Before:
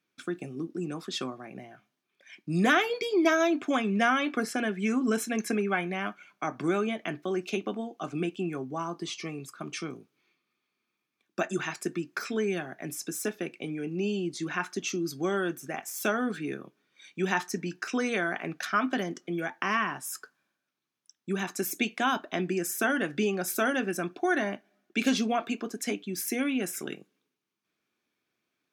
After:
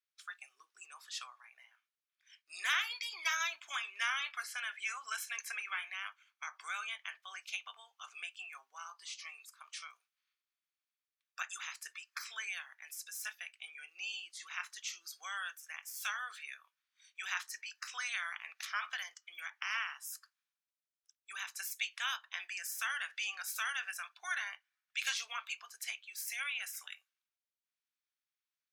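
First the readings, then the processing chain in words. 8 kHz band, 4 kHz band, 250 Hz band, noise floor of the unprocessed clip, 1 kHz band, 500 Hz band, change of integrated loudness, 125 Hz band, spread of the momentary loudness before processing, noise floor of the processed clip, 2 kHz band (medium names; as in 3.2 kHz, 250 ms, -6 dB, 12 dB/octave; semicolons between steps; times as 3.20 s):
-5.5 dB, -3.0 dB, under -40 dB, -83 dBFS, -12.0 dB, -35.5 dB, -9.5 dB, under -40 dB, 12 LU, under -85 dBFS, -6.0 dB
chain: spectral peaks clipped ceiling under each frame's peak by 14 dB; spectral noise reduction 7 dB; high-pass 1.2 kHz 24 dB/octave; trim -7.5 dB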